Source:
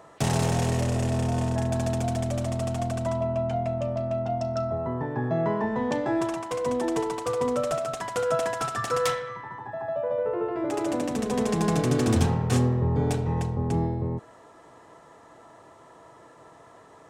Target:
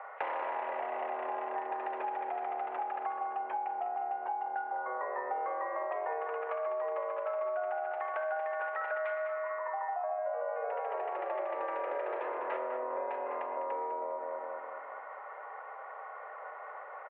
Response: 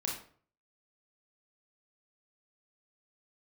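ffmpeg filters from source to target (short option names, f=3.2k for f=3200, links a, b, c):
-filter_complex "[0:a]asplit=2[a][b];[b]adelay=202,lowpass=f=1.6k:p=1,volume=-5dB,asplit=2[c][d];[d]adelay=202,lowpass=f=1.6k:p=1,volume=0.51,asplit=2[e][f];[f]adelay=202,lowpass=f=1.6k:p=1,volume=0.51,asplit=2[g][h];[h]adelay=202,lowpass=f=1.6k:p=1,volume=0.51,asplit=2[i][j];[j]adelay=202,lowpass=f=1.6k:p=1,volume=0.51,asplit=2[k][l];[l]adelay=202,lowpass=f=1.6k:p=1,volume=0.51[m];[a][c][e][g][i][k][m]amix=inputs=7:normalize=0,highpass=f=390:t=q:w=0.5412,highpass=f=390:t=q:w=1.307,lowpass=f=2.2k:t=q:w=0.5176,lowpass=f=2.2k:t=q:w=0.7071,lowpass=f=2.2k:t=q:w=1.932,afreqshift=130,asplit=2[n][o];[1:a]atrim=start_sample=2205,adelay=83[p];[o][p]afir=irnorm=-1:irlink=0,volume=-17dB[q];[n][q]amix=inputs=2:normalize=0,acompressor=threshold=-39dB:ratio=6,volume=5.5dB"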